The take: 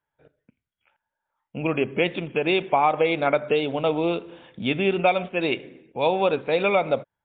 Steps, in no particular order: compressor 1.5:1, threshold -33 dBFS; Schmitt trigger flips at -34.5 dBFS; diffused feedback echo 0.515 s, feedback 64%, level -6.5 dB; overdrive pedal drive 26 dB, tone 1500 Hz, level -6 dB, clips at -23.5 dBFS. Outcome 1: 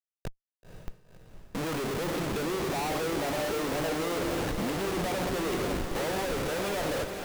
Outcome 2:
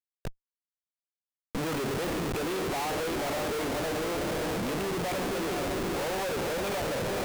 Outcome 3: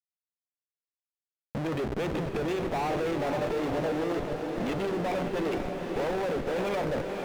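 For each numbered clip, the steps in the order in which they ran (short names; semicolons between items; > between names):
overdrive pedal > compressor > Schmitt trigger > diffused feedback echo; overdrive pedal > diffused feedback echo > compressor > Schmitt trigger; Schmitt trigger > overdrive pedal > diffused feedback echo > compressor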